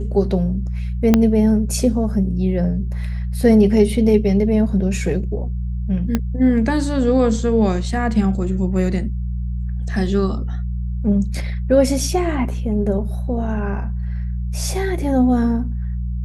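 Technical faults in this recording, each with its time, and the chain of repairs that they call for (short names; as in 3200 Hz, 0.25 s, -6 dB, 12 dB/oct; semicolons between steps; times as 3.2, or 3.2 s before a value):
hum 60 Hz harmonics 3 -23 dBFS
1.14 pop -1 dBFS
6.15 pop -6 dBFS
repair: de-click; de-hum 60 Hz, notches 3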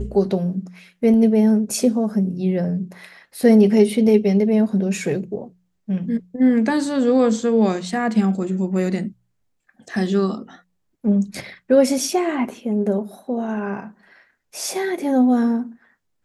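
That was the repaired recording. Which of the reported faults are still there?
1.14 pop
6.15 pop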